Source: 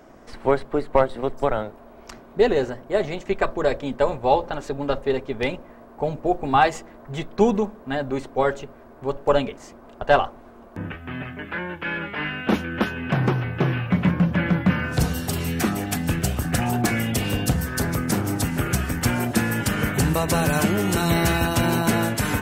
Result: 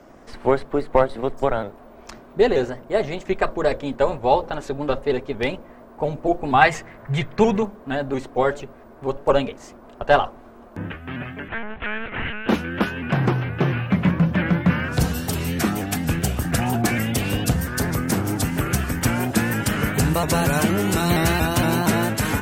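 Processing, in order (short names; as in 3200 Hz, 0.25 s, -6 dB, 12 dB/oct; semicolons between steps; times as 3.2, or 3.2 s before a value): 6.61–7.63 graphic EQ 125/250/2000 Hz +12/-5/+9 dB; 11.48–12.48 monotone LPC vocoder at 8 kHz 220 Hz; shaped vibrato saw up 4.3 Hz, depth 100 cents; gain +1 dB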